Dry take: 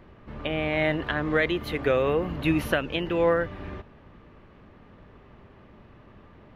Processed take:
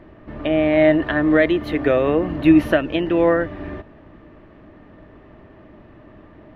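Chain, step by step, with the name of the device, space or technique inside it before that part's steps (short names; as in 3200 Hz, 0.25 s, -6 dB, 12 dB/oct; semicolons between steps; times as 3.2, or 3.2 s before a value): inside a helmet (high shelf 5100 Hz -9 dB; small resonant body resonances 310/630/1800 Hz, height 10 dB, ringing for 45 ms); gain +3.5 dB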